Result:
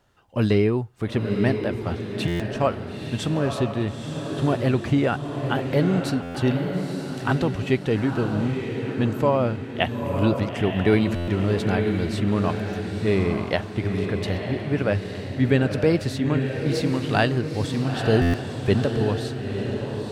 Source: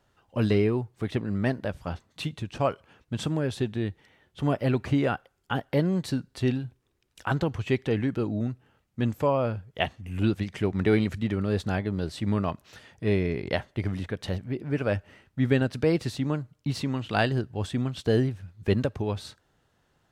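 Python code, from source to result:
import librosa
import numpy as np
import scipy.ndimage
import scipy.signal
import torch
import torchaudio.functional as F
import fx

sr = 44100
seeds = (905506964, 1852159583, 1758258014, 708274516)

y = fx.echo_diffused(x, sr, ms=926, feedback_pct=45, wet_db=-5.0)
y = fx.buffer_glitch(y, sr, at_s=(2.27, 6.22, 11.15, 18.21), block=512, repeats=10)
y = F.gain(torch.from_numpy(y), 3.5).numpy()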